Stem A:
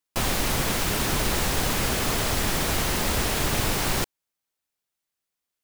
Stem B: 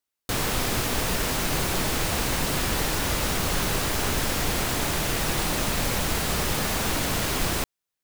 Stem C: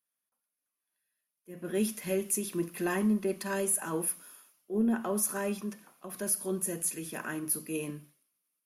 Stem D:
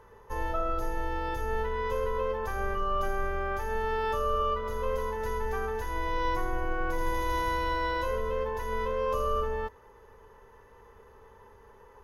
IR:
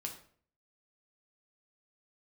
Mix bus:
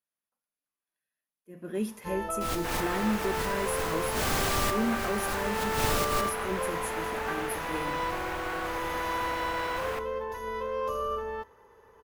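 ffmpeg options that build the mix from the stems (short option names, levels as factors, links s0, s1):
-filter_complex "[0:a]acontrast=37,adelay=2250,volume=0.316,asplit=2[s0][s1];[s1]volume=0.133[s2];[1:a]acrossover=split=540 2500:gain=0.178 1 0.126[s3][s4][s5];[s3][s4][s5]amix=inputs=3:normalize=0,adelay=2350,volume=0.447,asplit=2[s6][s7];[s7]volume=0.631[s8];[2:a]highshelf=f=3300:g=-8.5,volume=0.841,asplit=2[s9][s10];[3:a]highpass=f=140:p=1,adelay=1750,volume=0.75,asplit=2[s11][s12];[s12]volume=0.168[s13];[s10]apad=whole_len=347736[s14];[s0][s14]sidechaincompress=threshold=0.00398:ratio=4:attack=5.4:release=104[s15];[4:a]atrim=start_sample=2205[s16];[s2][s8][s13]amix=inputs=3:normalize=0[s17];[s17][s16]afir=irnorm=-1:irlink=0[s18];[s15][s6][s9][s11][s18]amix=inputs=5:normalize=0"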